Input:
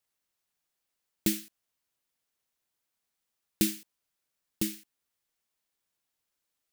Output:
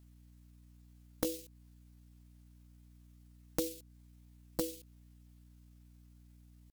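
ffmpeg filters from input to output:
-af "asetrate=68011,aresample=44100,atempo=0.64842,acompressor=threshold=0.00794:ratio=6,aeval=exprs='val(0)+0.000447*(sin(2*PI*60*n/s)+sin(2*PI*2*60*n/s)/2+sin(2*PI*3*60*n/s)/3+sin(2*PI*4*60*n/s)/4+sin(2*PI*5*60*n/s)/5)':c=same,volume=2.82"

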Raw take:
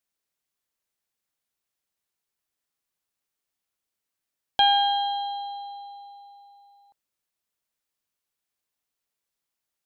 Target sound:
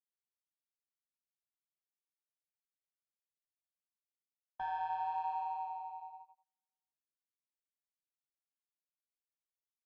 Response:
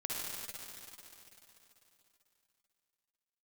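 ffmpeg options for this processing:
-filter_complex "[0:a]afreqshift=38,areverse,acompressor=threshold=0.0282:ratio=8,areverse,equalizer=f=100:w=0.43:g=10.5,asplit=2[s0][s1];[s1]adelay=14,volume=0.447[s2];[s0][s2]amix=inputs=2:normalize=0,aeval=exprs='val(0)*sin(2*PI*84*n/s)':c=same,highshelf=f=2200:t=q:w=1.5:g=-12,adynamicsmooth=sensitivity=2:basefreq=1600,flanger=delay=1.1:depth=7:regen=-32:speed=0.89:shape=triangular,agate=range=0.00794:threshold=0.00355:ratio=16:detection=peak"

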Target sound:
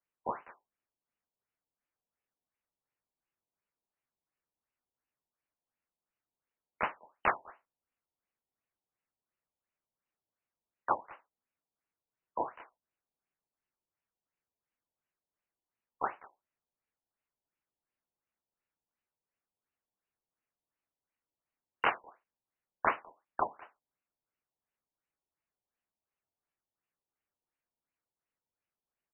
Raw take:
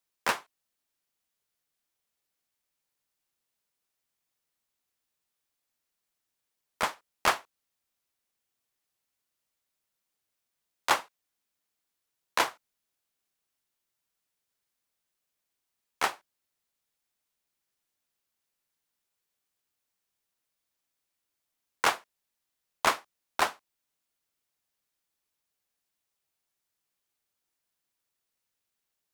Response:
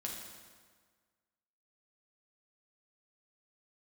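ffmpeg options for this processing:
-filter_complex "[0:a]asplit=2[s0][s1];[s1]adelay=200,highpass=300,lowpass=3400,asoftclip=type=hard:threshold=0.119,volume=0.0891[s2];[s0][s2]amix=inputs=2:normalize=0,afftfilt=real='re*lt(b*sr/1024,980*pow(3100/980,0.5+0.5*sin(2*PI*2.8*pts/sr)))':imag='im*lt(b*sr/1024,980*pow(3100/980,0.5+0.5*sin(2*PI*2.8*pts/sr)))':win_size=1024:overlap=0.75,volume=0.668"

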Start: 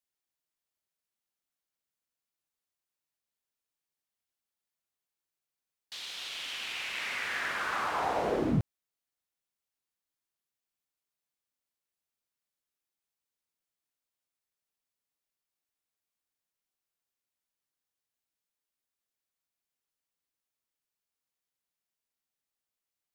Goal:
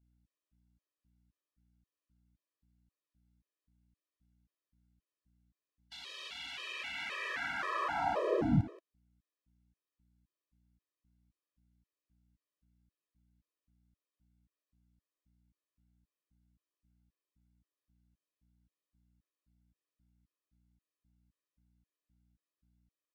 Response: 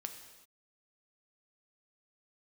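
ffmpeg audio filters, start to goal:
-filter_complex "[0:a]aeval=exprs='val(0)+0.000282*(sin(2*PI*60*n/s)+sin(2*PI*2*60*n/s)/2+sin(2*PI*3*60*n/s)/3+sin(2*PI*4*60*n/s)/4+sin(2*PI*5*60*n/s)/5)':c=same,aemphasis=mode=reproduction:type=50kf,asplit=2[s0][s1];[s1]aecho=0:1:178:0.316[s2];[s0][s2]amix=inputs=2:normalize=0,aresample=32000,aresample=44100,afftfilt=real='re*gt(sin(2*PI*1.9*pts/sr)*(1-2*mod(floor(b*sr/1024/330),2)),0)':imag='im*gt(sin(2*PI*1.9*pts/sr)*(1-2*mod(floor(b*sr/1024/330),2)),0)':win_size=1024:overlap=0.75"

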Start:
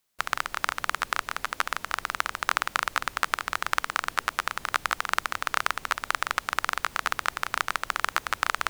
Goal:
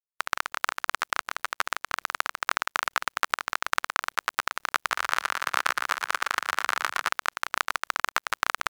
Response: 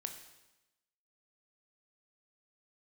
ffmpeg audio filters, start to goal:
-filter_complex "[0:a]aeval=exprs='sgn(val(0))*max(abs(val(0))-0.00891,0)':c=same,asplit=3[s0][s1][s2];[s0]afade=t=out:st=4.89:d=0.02[s3];[s1]asplit=7[s4][s5][s6][s7][s8][s9][s10];[s5]adelay=117,afreqshift=34,volume=0.531[s11];[s6]adelay=234,afreqshift=68,volume=0.272[s12];[s7]adelay=351,afreqshift=102,volume=0.138[s13];[s8]adelay=468,afreqshift=136,volume=0.0708[s14];[s9]adelay=585,afreqshift=170,volume=0.0359[s15];[s10]adelay=702,afreqshift=204,volume=0.0184[s16];[s4][s11][s12][s13][s14][s15][s16]amix=inputs=7:normalize=0,afade=t=in:st=4.89:d=0.02,afade=t=out:st=7.08:d=0.02[s17];[s2]afade=t=in:st=7.08:d=0.02[s18];[s3][s17][s18]amix=inputs=3:normalize=0"

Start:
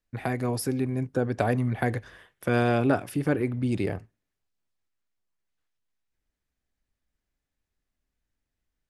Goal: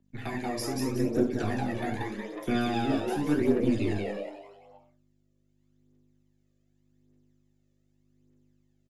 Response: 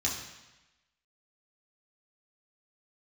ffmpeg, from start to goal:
-filter_complex "[1:a]atrim=start_sample=2205,atrim=end_sample=4410[s0];[0:a][s0]afir=irnorm=-1:irlink=0,aeval=exprs='val(0)+0.00178*(sin(2*PI*50*n/s)+sin(2*PI*2*50*n/s)/2+sin(2*PI*3*50*n/s)/3+sin(2*PI*4*50*n/s)/4+sin(2*PI*5*50*n/s)/5)':c=same,highpass=100,asplit=6[s1][s2][s3][s4][s5][s6];[s2]adelay=183,afreqshift=100,volume=0.668[s7];[s3]adelay=366,afreqshift=200,volume=0.266[s8];[s4]adelay=549,afreqshift=300,volume=0.107[s9];[s5]adelay=732,afreqshift=400,volume=0.0427[s10];[s6]adelay=915,afreqshift=500,volume=0.0172[s11];[s1][s7][s8][s9][s10][s11]amix=inputs=6:normalize=0,aphaser=in_gain=1:out_gain=1:delay=1.8:decay=0.52:speed=0.84:type=triangular,acrossover=split=220|400|2500[s12][s13][s14][s15];[s12]aeval=exprs='max(val(0),0)':c=same[s16];[s14]alimiter=limit=0.106:level=0:latency=1:release=399[s17];[s16][s13][s17][s15]amix=inputs=4:normalize=0,volume=0.376"

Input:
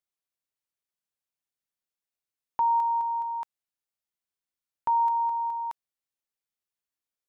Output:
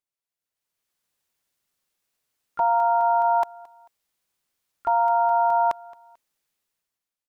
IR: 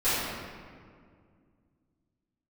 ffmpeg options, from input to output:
-filter_complex "[0:a]alimiter=level_in=1.88:limit=0.0631:level=0:latency=1:release=29,volume=0.531,asplit=3[s0][s1][s2];[s1]asetrate=33038,aresample=44100,atempo=1.33484,volume=0.708[s3];[s2]asetrate=66075,aresample=44100,atempo=0.66742,volume=0.178[s4];[s0][s3][s4]amix=inputs=3:normalize=0,dynaudnorm=f=130:g=11:m=5.62,aecho=1:1:221|442:0.075|0.0262,volume=0.631"

